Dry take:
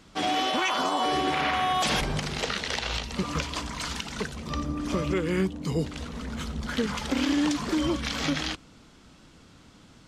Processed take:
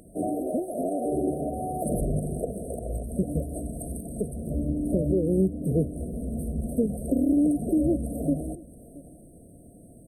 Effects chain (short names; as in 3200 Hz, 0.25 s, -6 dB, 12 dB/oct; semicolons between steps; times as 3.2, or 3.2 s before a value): brick-wall FIR band-stop 730–8200 Hz; echo 0.674 s -22.5 dB; mismatched tape noise reduction encoder only; gain +3.5 dB